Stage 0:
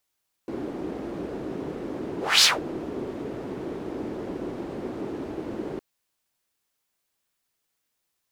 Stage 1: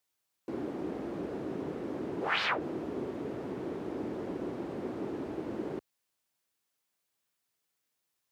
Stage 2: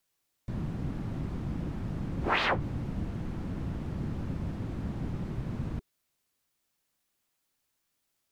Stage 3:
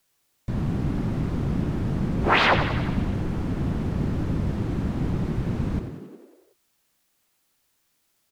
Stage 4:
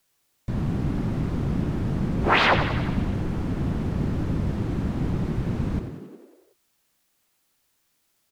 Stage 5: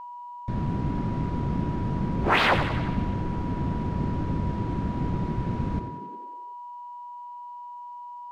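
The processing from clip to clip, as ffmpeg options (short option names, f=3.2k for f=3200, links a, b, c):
-filter_complex "[0:a]highpass=71,acrossover=split=2600[a][b];[b]acompressor=threshold=-57dB:ratio=4:attack=1:release=60[c];[a][c]amix=inputs=2:normalize=0,volume=-4dB"
-af "afreqshift=-450,volume=3dB"
-filter_complex "[0:a]asplit=9[a][b][c][d][e][f][g][h][i];[b]adelay=91,afreqshift=42,volume=-9dB[j];[c]adelay=182,afreqshift=84,volume=-13dB[k];[d]adelay=273,afreqshift=126,volume=-17dB[l];[e]adelay=364,afreqshift=168,volume=-21dB[m];[f]adelay=455,afreqshift=210,volume=-25.1dB[n];[g]adelay=546,afreqshift=252,volume=-29.1dB[o];[h]adelay=637,afreqshift=294,volume=-33.1dB[p];[i]adelay=728,afreqshift=336,volume=-37.1dB[q];[a][j][k][l][m][n][o][p][q]amix=inputs=9:normalize=0,volume=8dB"
-af anull
-af "aeval=exprs='val(0)+0.0178*sin(2*PI*970*n/s)':c=same,adynamicsmooth=sensitivity=7.5:basefreq=5.5k,volume=-2dB"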